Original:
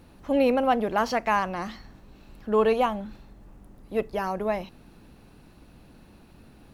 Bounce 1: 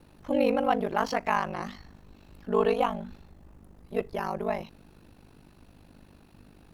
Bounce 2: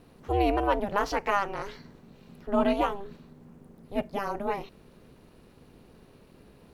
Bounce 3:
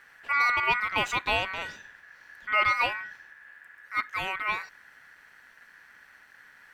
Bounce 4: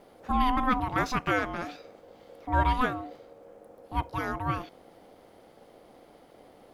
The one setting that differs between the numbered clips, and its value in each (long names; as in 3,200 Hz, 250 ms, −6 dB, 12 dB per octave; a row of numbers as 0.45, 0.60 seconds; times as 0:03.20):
ring modulation, frequency: 25, 200, 1,700, 510 Hertz